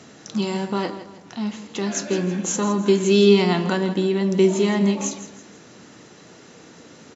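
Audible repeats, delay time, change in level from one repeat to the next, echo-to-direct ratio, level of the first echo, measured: 3, 163 ms, -8.5 dB, -13.0 dB, -13.5 dB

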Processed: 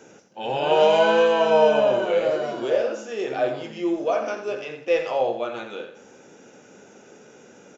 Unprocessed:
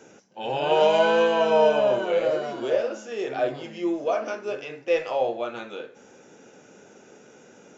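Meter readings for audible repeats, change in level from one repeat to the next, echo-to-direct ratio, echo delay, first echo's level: 2, -11.0 dB, -9.5 dB, 88 ms, -10.0 dB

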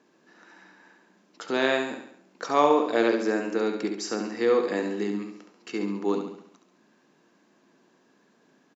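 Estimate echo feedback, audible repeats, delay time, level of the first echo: 50%, 5, 69 ms, -7.0 dB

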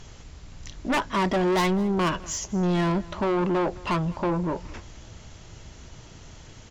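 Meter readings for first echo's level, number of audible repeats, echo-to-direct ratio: -21.0 dB, 2, -21.0 dB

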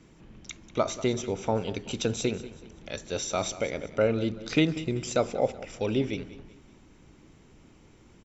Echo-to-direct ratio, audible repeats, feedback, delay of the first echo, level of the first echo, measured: -16.0 dB, 3, 39%, 190 ms, -16.5 dB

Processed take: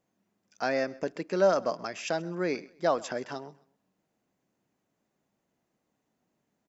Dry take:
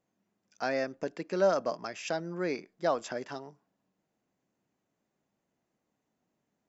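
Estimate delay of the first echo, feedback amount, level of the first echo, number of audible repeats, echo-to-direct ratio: 131 ms, 31%, -22.0 dB, 2, -21.5 dB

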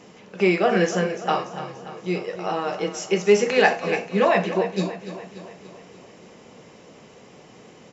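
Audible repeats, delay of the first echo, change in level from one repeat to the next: 5, 290 ms, -5.0 dB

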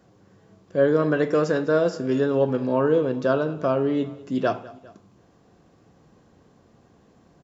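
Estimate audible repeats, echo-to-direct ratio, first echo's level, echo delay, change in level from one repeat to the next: 2, -19.0 dB, -20.0 dB, 201 ms, -5.0 dB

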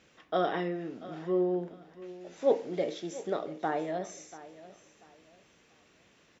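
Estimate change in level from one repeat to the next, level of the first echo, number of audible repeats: -11.0 dB, -17.0 dB, 2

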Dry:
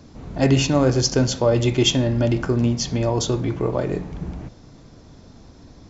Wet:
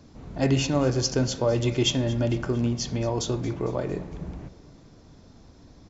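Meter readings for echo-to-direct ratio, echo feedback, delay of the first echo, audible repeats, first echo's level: -17.5 dB, 54%, 227 ms, 3, -19.0 dB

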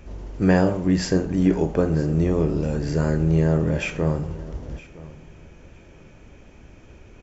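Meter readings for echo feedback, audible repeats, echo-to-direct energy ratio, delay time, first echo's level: 20%, 2, -19.5 dB, 965 ms, -19.5 dB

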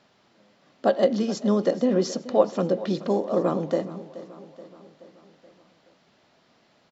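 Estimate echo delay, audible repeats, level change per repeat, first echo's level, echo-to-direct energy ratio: 427 ms, 4, -5.0 dB, -16.5 dB, -15.0 dB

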